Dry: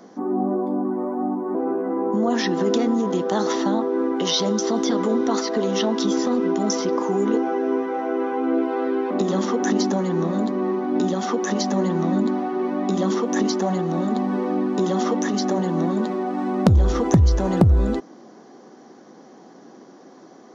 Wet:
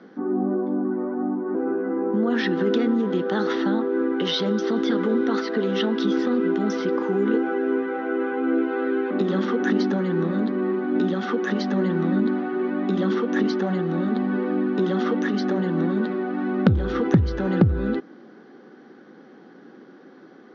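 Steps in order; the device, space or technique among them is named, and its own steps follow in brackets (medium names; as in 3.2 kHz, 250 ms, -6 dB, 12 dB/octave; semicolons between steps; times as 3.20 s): guitar cabinet (cabinet simulation 110–3800 Hz, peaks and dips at 670 Hz -10 dB, 1 kHz -8 dB, 1.5 kHz +7 dB)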